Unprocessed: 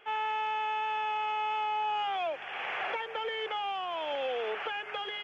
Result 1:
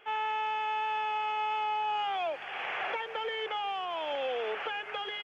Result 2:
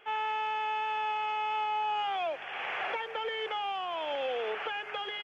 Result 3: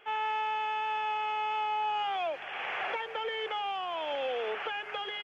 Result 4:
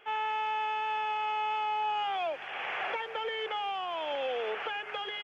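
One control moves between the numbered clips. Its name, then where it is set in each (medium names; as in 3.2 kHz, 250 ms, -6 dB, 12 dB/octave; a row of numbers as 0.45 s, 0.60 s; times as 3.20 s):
speakerphone echo, time: 390 ms, 100 ms, 150 ms, 230 ms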